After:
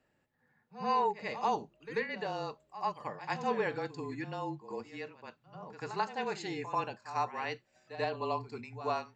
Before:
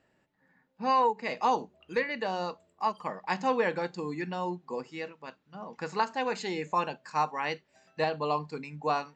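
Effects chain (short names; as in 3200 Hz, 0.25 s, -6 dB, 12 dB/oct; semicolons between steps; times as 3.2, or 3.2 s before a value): frequency shift -29 Hz; pre-echo 89 ms -12.5 dB; gain -5 dB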